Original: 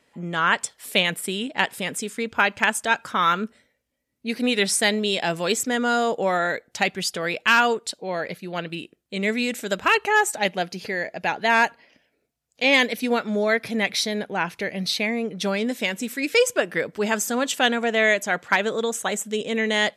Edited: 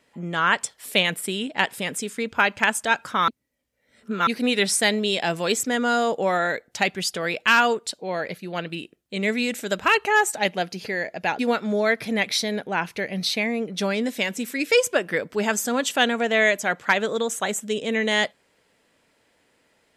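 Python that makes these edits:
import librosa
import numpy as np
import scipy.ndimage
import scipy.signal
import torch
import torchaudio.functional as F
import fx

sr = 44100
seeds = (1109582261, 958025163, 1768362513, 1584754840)

y = fx.edit(x, sr, fx.reverse_span(start_s=3.28, length_s=0.99),
    fx.cut(start_s=11.39, length_s=1.63), tone=tone)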